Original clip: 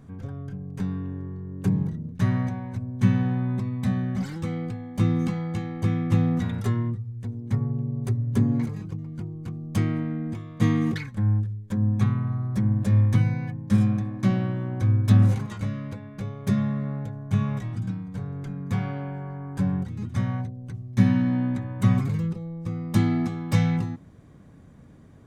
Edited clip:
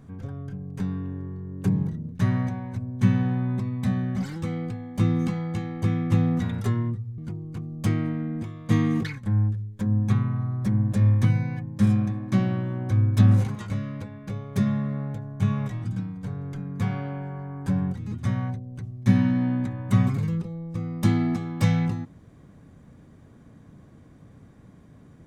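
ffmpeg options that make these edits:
-filter_complex "[0:a]asplit=2[s0][s1];[s0]atrim=end=7.182[s2];[s1]atrim=start=9.088[s3];[s2][s3]acrossfade=d=0.004:c1=hsin:c2=hsin"

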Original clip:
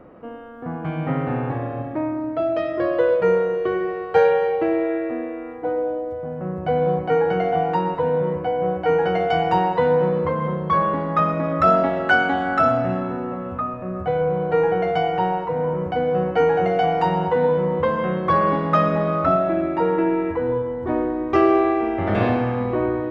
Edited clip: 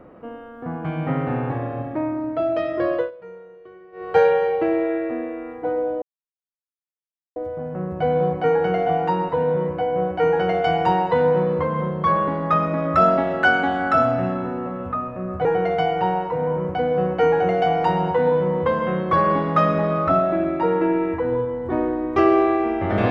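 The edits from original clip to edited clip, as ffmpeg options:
-filter_complex "[0:a]asplit=5[s0][s1][s2][s3][s4];[s0]atrim=end=3.11,asetpts=PTS-STARTPTS,afade=t=out:st=2.94:d=0.17:silence=0.0794328[s5];[s1]atrim=start=3.11:end=3.92,asetpts=PTS-STARTPTS,volume=0.0794[s6];[s2]atrim=start=3.92:end=6.02,asetpts=PTS-STARTPTS,afade=t=in:d=0.17:silence=0.0794328,afade=t=out:st=2.096:d=0.004:c=hsin,apad=pad_dur=1.34[s7];[s3]atrim=start=6.02:end=14.112,asetpts=PTS-STARTPTS,afade=t=in:d=0.004:c=hsin[s8];[s4]atrim=start=14.618[s9];[s5][s6][s7][s8]concat=n=4:v=0:a=1[s10];[s10][s9]acrossfade=d=0.004:c1=hsin:c2=hsin"

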